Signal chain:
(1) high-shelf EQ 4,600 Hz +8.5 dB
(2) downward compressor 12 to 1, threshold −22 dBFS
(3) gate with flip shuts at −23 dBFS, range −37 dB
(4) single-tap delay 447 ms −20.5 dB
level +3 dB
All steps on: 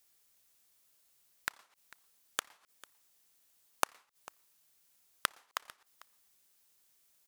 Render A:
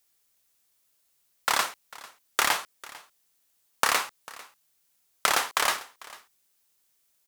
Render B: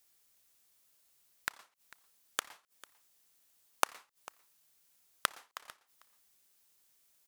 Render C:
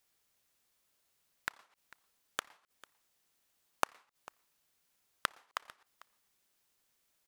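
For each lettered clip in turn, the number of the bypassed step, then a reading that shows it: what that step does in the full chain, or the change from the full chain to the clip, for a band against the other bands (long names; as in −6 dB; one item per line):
3, change in crest factor −11.5 dB
2, average gain reduction 4.0 dB
1, 8 kHz band −6.0 dB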